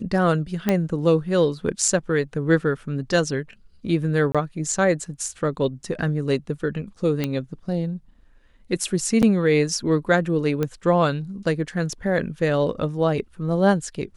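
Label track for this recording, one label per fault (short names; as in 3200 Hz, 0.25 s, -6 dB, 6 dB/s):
0.690000	0.690000	pop -7 dBFS
4.320000	4.350000	gap 26 ms
7.240000	7.240000	pop -10 dBFS
9.220000	9.230000	gap 8 ms
10.630000	10.630000	pop -12 dBFS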